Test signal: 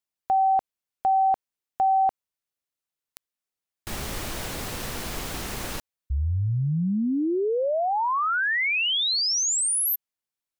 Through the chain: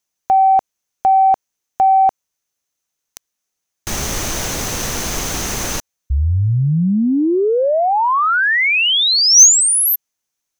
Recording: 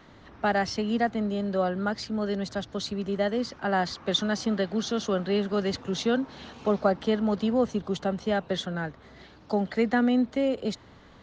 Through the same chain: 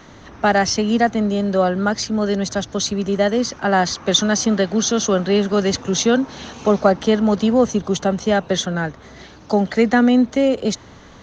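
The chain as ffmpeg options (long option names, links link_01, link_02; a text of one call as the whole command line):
ffmpeg -i in.wav -af "equalizer=frequency=6200:width_type=o:width=0.25:gain=12.5,acontrast=48,volume=3.5dB" out.wav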